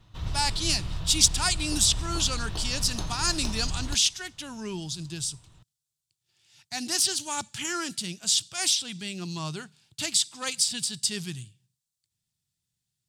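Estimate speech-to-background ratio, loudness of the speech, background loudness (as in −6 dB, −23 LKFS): 9.0 dB, −26.5 LKFS, −35.5 LKFS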